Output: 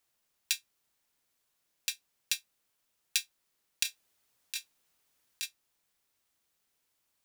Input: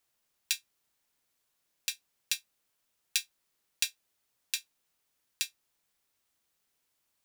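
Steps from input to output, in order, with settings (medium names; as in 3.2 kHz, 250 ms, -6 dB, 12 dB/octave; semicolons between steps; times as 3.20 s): 3.83–5.46 s: compressor with a negative ratio -33 dBFS, ratio -0.5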